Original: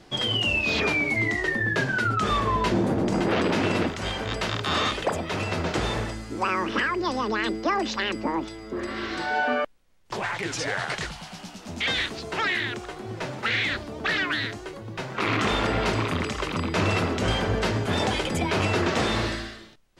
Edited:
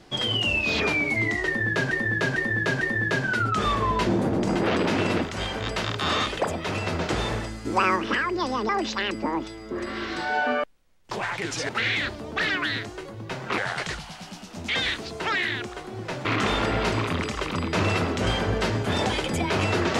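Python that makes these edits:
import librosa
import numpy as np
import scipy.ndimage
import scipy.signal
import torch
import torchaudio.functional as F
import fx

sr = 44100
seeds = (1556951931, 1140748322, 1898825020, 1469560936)

y = fx.edit(x, sr, fx.repeat(start_s=1.46, length_s=0.45, count=4),
    fx.clip_gain(start_s=6.3, length_s=0.31, db=4.0),
    fx.cut(start_s=7.34, length_s=0.36),
    fx.move(start_s=13.37, length_s=1.89, to_s=10.7), tone=tone)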